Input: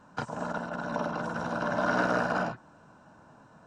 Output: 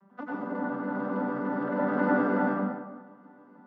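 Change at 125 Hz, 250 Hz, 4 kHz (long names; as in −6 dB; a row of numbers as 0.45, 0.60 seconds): −0.5 dB, +7.0 dB, below −15 dB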